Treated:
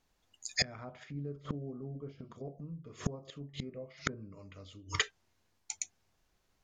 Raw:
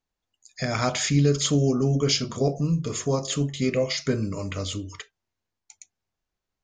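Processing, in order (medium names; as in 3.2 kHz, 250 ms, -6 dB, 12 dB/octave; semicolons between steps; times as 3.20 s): low-pass that closes with the level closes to 980 Hz, closed at -20 dBFS; inverted gate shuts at -25 dBFS, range -30 dB; trim +9.5 dB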